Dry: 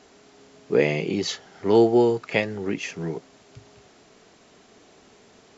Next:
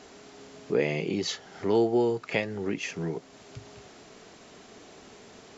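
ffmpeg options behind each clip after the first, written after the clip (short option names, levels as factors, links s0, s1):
-af "acompressor=threshold=0.00794:ratio=1.5,volume=1.5"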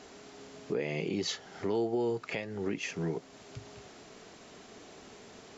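-af "alimiter=limit=0.0891:level=0:latency=1:release=266,volume=0.841"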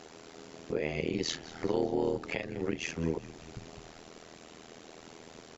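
-filter_complex "[0:a]tremolo=f=81:d=0.974,asplit=7[s0][s1][s2][s3][s4][s5][s6];[s1]adelay=197,afreqshift=-47,volume=0.133[s7];[s2]adelay=394,afreqshift=-94,volume=0.0822[s8];[s3]adelay=591,afreqshift=-141,volume=0.0513[s9];[s4]adelay=788,afreqshift=-188,volume=0.0316[s10];[s5]adelay=985,afreqshift=-235,volume=0.0197[s11];[s6]adelay=1182,afreqshift=-282,volume=0.0122[s12];[s0][s7][s8][s9][s10][s11][s12]amix=inputs=7:normalize=0,volume=1.68"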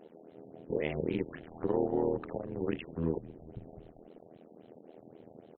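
-af "equalizer=f=3000:t=o:w=0.21:g=5,afwtdn=0.00631,afftfilt=real='re*lt(b*sr/1024,930*pow(4300/930,0.5+0.5*sin(2*PI*3.7*pts/sr)))':imag='im*lt(b*sr/1024,930*pow(4300/930,0.5+0.5*sin(2*PI*3.7*pts/sr)))':win_size=1024:overlap=0.75"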